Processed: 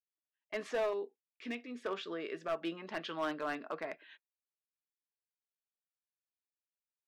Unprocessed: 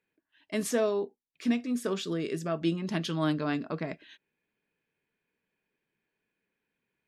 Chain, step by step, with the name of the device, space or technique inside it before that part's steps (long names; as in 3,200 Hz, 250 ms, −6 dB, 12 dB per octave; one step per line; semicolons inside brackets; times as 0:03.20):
walkie-talkie (band-pass filter 580–2,400 Hz; hard clipping −29 dBFS, distortion −13 dB; noise gate −59 dBFS, range −27 dB)
0:00.93–0:01.84: flat-topped bell 960 Hz −8.5 dB